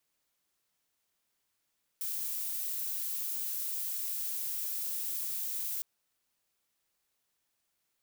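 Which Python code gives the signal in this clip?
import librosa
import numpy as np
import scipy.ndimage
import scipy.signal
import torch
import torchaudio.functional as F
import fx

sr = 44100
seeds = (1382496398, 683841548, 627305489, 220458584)

y = fx.noise_colour(sr, seeds[0], length_s=3.81, colour='violet', level_db=-35.5)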